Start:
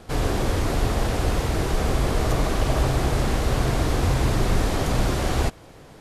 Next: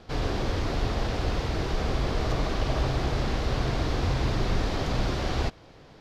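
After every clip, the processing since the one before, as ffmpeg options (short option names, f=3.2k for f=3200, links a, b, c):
-af "highshelf=f=6.8k:t=q:w=1.5:g=-12,volume=-5dB"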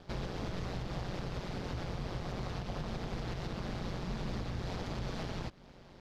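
-af "alimiter=limit=-24dB:level=0:latency=1:release=200,aeval=exprs='val(0)+0.00178*(sin(2*PI*50*n/s)+sin(2*PI*2*50*n/s)/2+sin(2*PI*3*50*n/s)/3+sin(2*PI*4*50*n/s)/4+sin(2*PI*5*50*n/s)/5)':c=same,aeval=exprs='val(0)*sin(2*PI*91*n/s)':c=same,volume=-2.5dB"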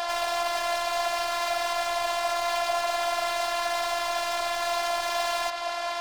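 -filter_complex "[0:a]asplit=2[a][b];[b]highpass=f=720:p=1,volume=39dB,asoftclip=type=tanh:threshold=-26dB[c];[a][c]amix=inputs=2:normalize=0,lowpass=f=7.6k:p=1,volume=-6dB,lowshelf=f=500:t=q:w=3:g=-12.5,afftfilt=real='hypot(re,im)*cos(PI*b)':imag='0':win_size=512:overlap=0.75,volume=6.5dB"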